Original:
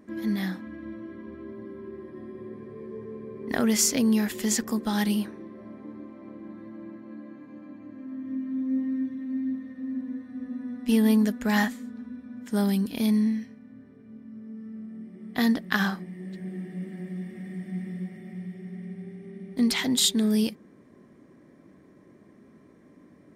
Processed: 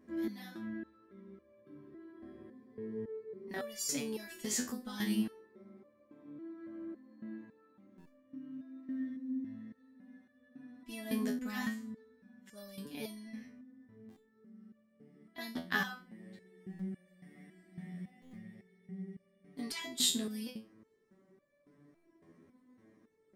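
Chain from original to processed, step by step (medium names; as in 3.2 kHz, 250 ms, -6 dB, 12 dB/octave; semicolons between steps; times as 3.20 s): buffer glitch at 7.97/14.08/16.69/18.21/21.93 s, samples 512, times 8; resonator arpeggio 3.6 Hz 83–580 Hz; trim +1.5 dB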